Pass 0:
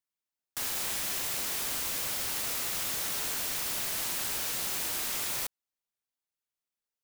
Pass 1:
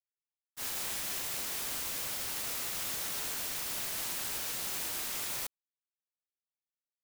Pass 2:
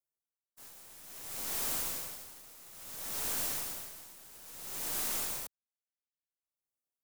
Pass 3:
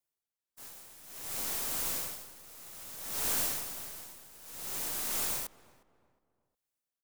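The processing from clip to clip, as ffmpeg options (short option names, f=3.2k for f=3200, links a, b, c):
-af "agate=range=-33dB:threshold=-26dB:ratio=3:detection=peak,volume=3.5dB"
-filter_complex "[0:a]acrossover=split=130|1300|5800[a][b][c][d];[c]acrusher=bits=5:dc=4:mix=0:aa=0.000001[e];[a][b][e][d]amix=inputs=4:normalize=0,aeval=exprs='val(0)*pow(10,-20*(0.5-0.5*cos(2*PI*0.59*n/s))/20)':c=same,volume=3.5dB"
-filter_complex "[0:a]tremolo=f=1.5:d=0.45,asplit=2[a][b];[b]adelay=360,lowpass=f=1.3k:p=1,volume=-18dB,asplit=2[c][d];[d]adelay=360,lowpass=f=1.3k:p=1,volume=0.39,asplit=2[e][f];[f]adelay=360,lowpass=f=1.3k:p=1,volume=0.39[g];[a][c][e][g]amix=inputs=4:normalize=0,volume=4dB"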